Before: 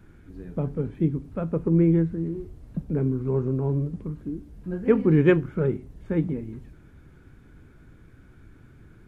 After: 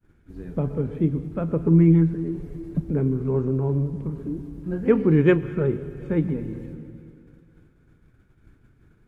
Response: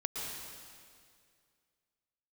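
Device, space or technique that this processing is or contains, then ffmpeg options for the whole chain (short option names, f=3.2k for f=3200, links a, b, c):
compressed reverb return: -filter_complex "[0:a]agate=range=-33dB:threshold=-41dB:ratio=3:detection=peak,asettb=1/sr,asplit=3[a][b][c];[a]atrim=end=1.674[d];[b]atrim=start=1.67:end=2.8,asetpts=PTS-STARTPTS,afade=t=in:d=0.004:c=qsin,afade=t=out:st=1.126:d=0.004:c=qsin,aecho=1:1:6.9:0.8,atrim=end_sample=49833[e];[c]atrim=start=2.796[f];[d][e]acrossfade=d=0.004:c1=hsin:c2=qsin[g];[g][f]acrossfade=d=0.004:c1=qsin:c2=hsin,asplit=2[h][i];[1:a]atrim=start_sample=2205[j];[i][j]afir=irnorm=-1:irlink=0,acompressor=threshold=-24dB:ratio=6,volume=-7dB[k];[h][k]amix=inputs=2:normalize=0"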